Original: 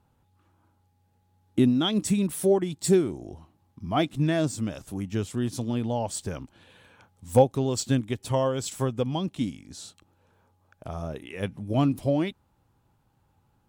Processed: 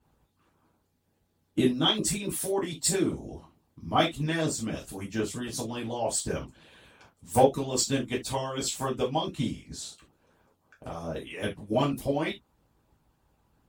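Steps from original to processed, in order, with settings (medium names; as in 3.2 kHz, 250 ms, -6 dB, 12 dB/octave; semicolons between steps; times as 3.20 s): gated-style reverb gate 100 ms falling, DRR -5 dB; harmonic-percussive split harmonic -15 dB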